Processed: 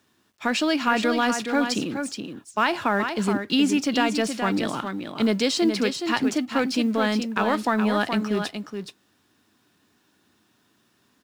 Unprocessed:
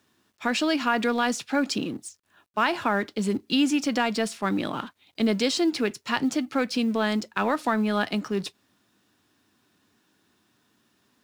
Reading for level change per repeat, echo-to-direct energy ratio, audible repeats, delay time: repeats not evenly spaced, −7.0 dB, 1, 421 ms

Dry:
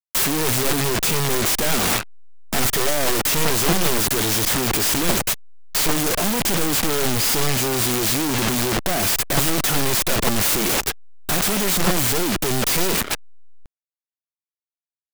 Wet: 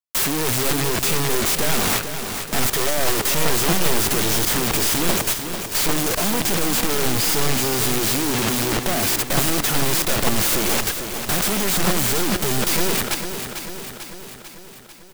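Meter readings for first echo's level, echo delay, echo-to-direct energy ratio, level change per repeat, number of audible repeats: −8.5 dB, 445 ms, −6.5 dB, −4.5 dB, 6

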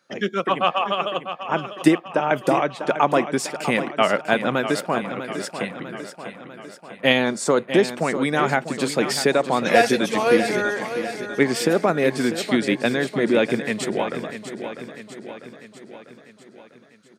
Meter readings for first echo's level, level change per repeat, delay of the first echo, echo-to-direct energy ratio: −10.5 dB, −5.0 dB, 647 ms, −9.0 dB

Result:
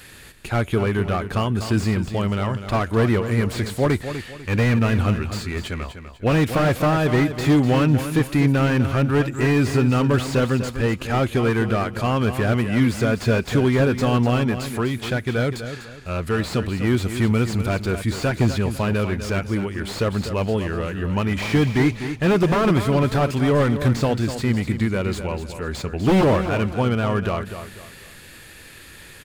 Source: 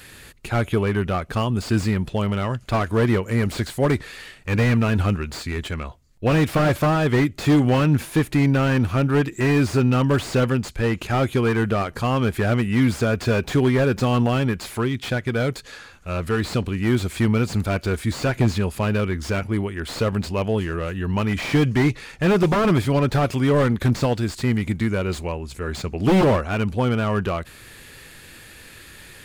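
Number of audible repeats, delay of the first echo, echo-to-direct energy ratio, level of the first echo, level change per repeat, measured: 3, 248 ms, −9.5 dB, −10.0 dB, −9.5 dB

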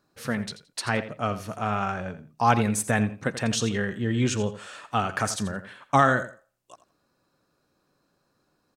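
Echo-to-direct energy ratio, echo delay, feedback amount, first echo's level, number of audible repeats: −13.5 dB, 85 ms, 19%, −13.5 dB, 2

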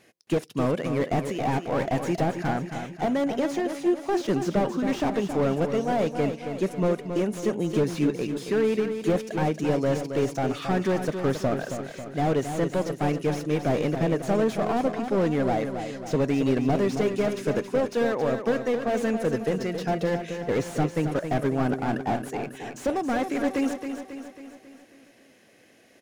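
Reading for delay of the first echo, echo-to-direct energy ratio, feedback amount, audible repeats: 272 ms, −6.5 dB, 54%, 6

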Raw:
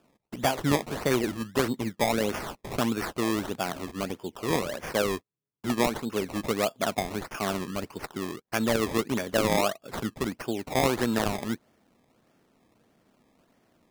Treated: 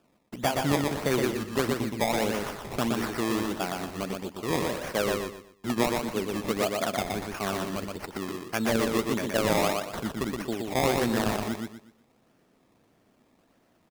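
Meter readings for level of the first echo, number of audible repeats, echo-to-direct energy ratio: −3.5 dB, 4, −3.0 dB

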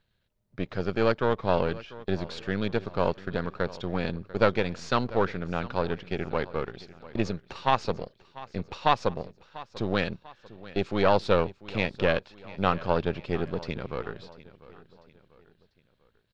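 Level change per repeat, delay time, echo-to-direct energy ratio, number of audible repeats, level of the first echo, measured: −7.5 dB, 694 ms, −17.5 dB, 3, −18.5 dB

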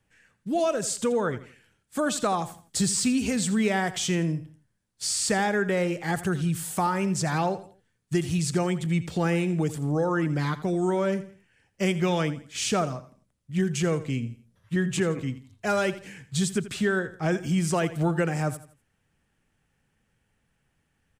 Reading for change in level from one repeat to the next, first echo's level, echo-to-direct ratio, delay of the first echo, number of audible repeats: −9.5 dB, −15.0 dB, −14.5 dB, 83 ms, 3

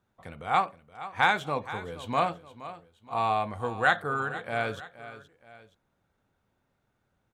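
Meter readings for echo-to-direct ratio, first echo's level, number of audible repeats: −14.0 dB, −15.0 dB, 2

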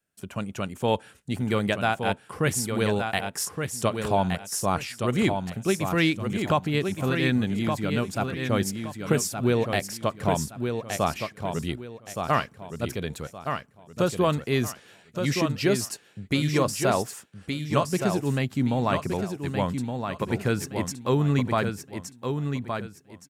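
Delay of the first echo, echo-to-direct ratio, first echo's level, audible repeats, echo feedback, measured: 1,169 ms, −5.5 dB, −6.0 dB, 3, 28%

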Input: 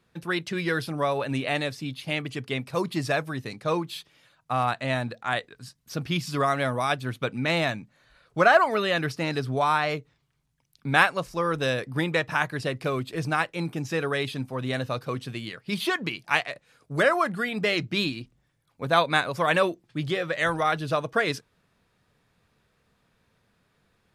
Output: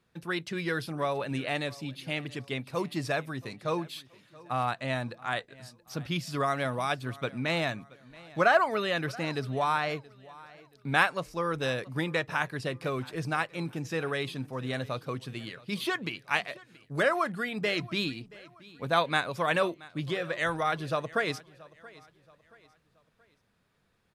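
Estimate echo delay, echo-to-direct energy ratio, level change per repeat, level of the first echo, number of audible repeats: 677 ms, −21.0 dB, −8.0 dB, −21.5 dB, 2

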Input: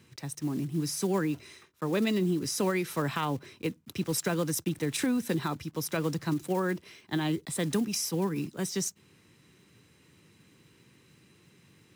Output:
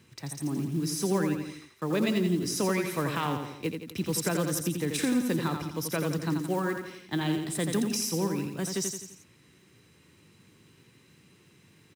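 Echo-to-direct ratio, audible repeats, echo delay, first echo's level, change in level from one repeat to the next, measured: −5.0 dB, 4, 85 ms, −6.0 dB, −6.0 dB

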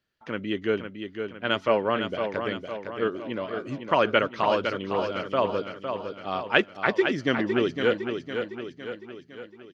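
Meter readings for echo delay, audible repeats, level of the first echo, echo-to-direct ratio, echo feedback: 508 ms, 5, −7.0 dB, −5.5 dB, 52%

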